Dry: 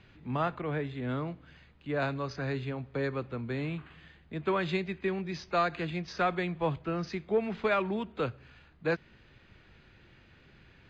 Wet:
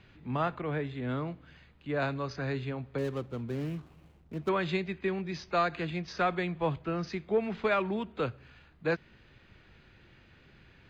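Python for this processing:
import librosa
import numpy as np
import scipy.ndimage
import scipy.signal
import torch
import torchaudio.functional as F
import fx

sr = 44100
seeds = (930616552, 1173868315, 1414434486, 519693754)

y = fx.median_filter(x, sr, points=25, at=(2.98, 4.49))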